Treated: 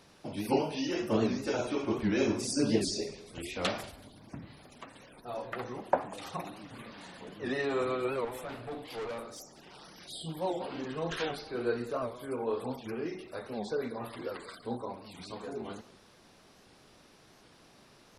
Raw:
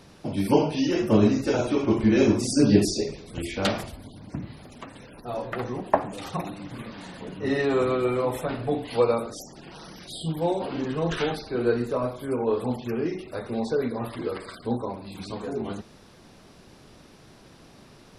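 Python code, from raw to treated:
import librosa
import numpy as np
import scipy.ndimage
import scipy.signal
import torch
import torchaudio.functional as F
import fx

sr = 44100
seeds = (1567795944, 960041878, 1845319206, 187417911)

p1 = fx.low_shelf(x, sr, hz=340.0, db=-8.0)
p2 = fx.tube_stage(p1, sr, drive_db=30.0, bias=0.4, at=(8.25, 9.98))
p3 = p2 + fx.echo_feedback(p2, sr, ms=187, feedback_pct=28, wet_db=-20.5, dry=0)
p4 = fx.record_warp(p3, sr, rpm=78.0, depth_cents=160.0)
y = p4 * librosa.db_to_amplitude(-5.0)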